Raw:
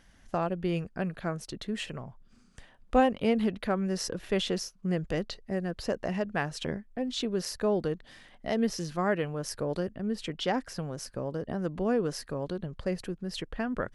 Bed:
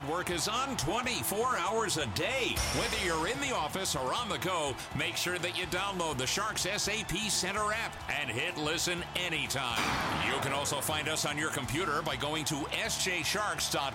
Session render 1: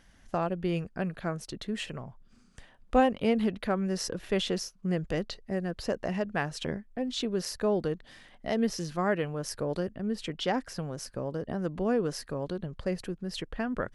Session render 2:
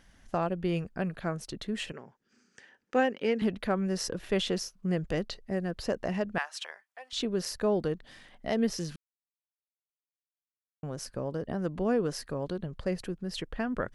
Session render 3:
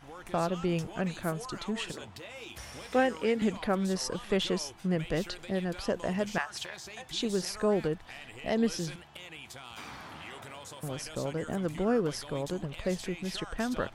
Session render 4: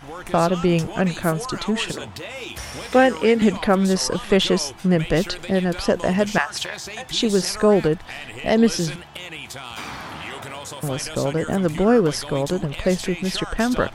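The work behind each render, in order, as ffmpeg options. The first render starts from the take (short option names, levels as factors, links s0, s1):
-af anull
-filter_complex "[0:a]asettb=1/sr,asplit=3[s0][s1][s2];[s0]atrim=end=1.924[s3];[s1]atrim=start=1.92:end=3.42,asetpts=PTS-STARTPTS,afade=t=in:d=0.004:c=qsin,afade=t=out:st=1.496:d=0.004:c=qsin,highpass=300,equalizer=f=400:t=q:w=4:g=4,equalizer=f=660:t=q:w=4:g=-10,equalizer=f=1100:t=q:w=4:g=-8,equalizer=f=1700:t=q:w=4:g=6,equalizer=f=3700:t=q:w=4:g=-6,equalizer=f=5900:t=q:w=4:g=4,lowpass=f=7600:w=0.5412,lowpass=f=7600:w=1.3066[s4];[s2]atrim=start=3.416[s5];[s3][s4]acrossfade=d=0.004:c1=hsin:c2=qsin[s6];[s6][s5]acrossfade=d=0.004:c1=qsin:c2=hsin,asettb=1/sr,asplit=3[s7][s8][s9];[s7]atrim=end=6.384[s10];[s8]atrim=start=6.38:end=7.13,asetpts=PTS-STARTPTS,afade=t=in:d=0.004:c=qsin,afade=t=out:st=0.746:d=0.004:c=qsin,highpass=f=820:w=0.5412,highpass=f=820:w=1.3066[s11];[s9]atrim=start=7.126[s12];[s10][s11]acrossfade=d=0.004:c1=hsin:c2=qsin[s13];[s13][s12]acrossfade=d=0.004:c1=qsin:c2=hsin,asplit=3[s14][s15][s16];[s14]atrim=end=8.96,asetpts=PTS-STARTPTS,afade=t=out:st=8.956:d=0.004:c=hsin[s17];[s15]atrim=start=8.96:end=10.83,asetpts=PTS-STARTPTS,volume=0[s18];[s16]atrim=start=10.83,asetpts=PTS-STARTPTS,afade=t=in:d=0.004:c=hsin[s19];[s17][s18][s19]concat=n=3:v=0:a=1"
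-filter_complex "[1:a]volume=0.211[s0];[0:a][s0]amix=inputs=2:normalize=0"
-af "volume=3.76,alimiter=limit=0.708:level=0:latency=1"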